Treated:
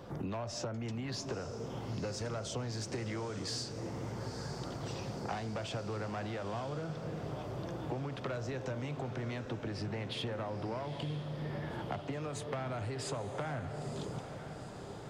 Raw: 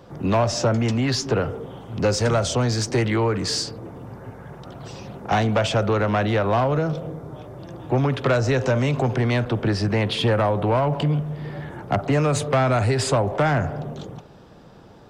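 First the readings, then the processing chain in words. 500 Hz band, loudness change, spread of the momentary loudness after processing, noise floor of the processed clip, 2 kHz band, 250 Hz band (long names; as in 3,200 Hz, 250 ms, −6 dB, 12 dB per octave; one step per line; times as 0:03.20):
−17.0 dB, −17.5 dB, 3 LU, −45 dBFS, −17.0 dB, −16.0 dB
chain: downward compressor 10 to 1, threshold −34 dBFS, peak gain reduction 18 dB
on a send: feedback delay with all-pass diffusion 925 ms, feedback 62%, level −9.5 dB
on the sum: level −2.5 dB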